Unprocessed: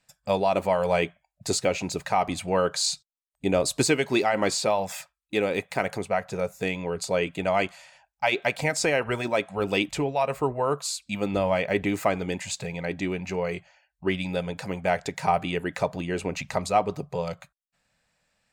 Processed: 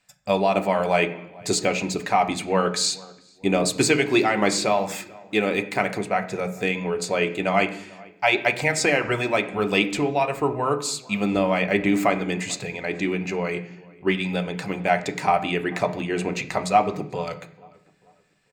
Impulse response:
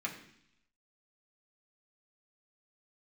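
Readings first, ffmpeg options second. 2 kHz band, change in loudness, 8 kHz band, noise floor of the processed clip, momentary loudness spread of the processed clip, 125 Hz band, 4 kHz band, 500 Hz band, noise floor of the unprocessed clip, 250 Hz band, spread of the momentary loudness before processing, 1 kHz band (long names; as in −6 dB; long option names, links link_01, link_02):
+5.5 dB, +3.5 dB, +2.5 dB, −56 dBFS, 9 LU, +2.5 dB, +3.5 dB, +2.0 dB, −82 dBFS, +5.0 dB, 8 LU, +4.0 dB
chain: -filter_complex "[0:a]equalizer=frequency=11000:width=2:gain=-6,asplit=2[link_01][link_02];[link_02]adelay=441,lowpass=frequency=1900:poles=1,volume=-23dB,asplit=2[link_03][link_04];[link_04]adelay=441,lowpass=frequency=1900:poles=1,volume=0.38,asplit=2[link_05][link_06];[link_06]adelay=441,lowpass=frequency=1900:poles=1,volume=0.38[link_07];[link_01][link_03][link_05][link_07]amix=inputs=4:normalize=0,asplit=2[link_08][link_09];[1:a]atrim=start_sample=2205[link_10];[link_09][link_10]afir=irnorm=-1:irlink=0,volume=-3dB[link_11];[link_08][link_11]amix=inputs=2:normalize=0"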